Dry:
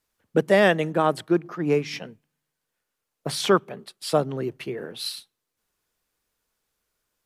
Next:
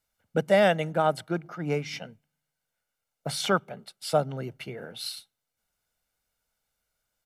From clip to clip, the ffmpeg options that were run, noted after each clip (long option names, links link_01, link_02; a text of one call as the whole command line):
ffmpeg -i in.wav -af "aecho=1:1:1.4:0.55,volume=-4dB" out.wav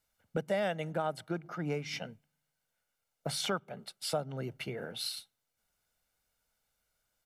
ffmpeg -i in.wav -af "acompressor=threshold=-34dB:ratio=2.5" out.wav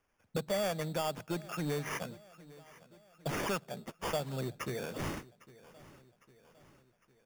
ffmpeg -i in.wav -filter_complex "[0:a]asplit=2[link_01][link_02];[link_02]aeval=exprs='0.0224*(abs(mod(val(0)/0.0224+3,4)-2)-1)':channel_layout=same,volume=-5dB[link_03];[link_01][link_03]amix=inputs=2:normalize=0,acrusher=samples=11:mix=1:aa=0.000001,aecho=1:1:805|1610|2415|3220:0.1|0.052|0.027|0.0141,volume=-2dB" out.wav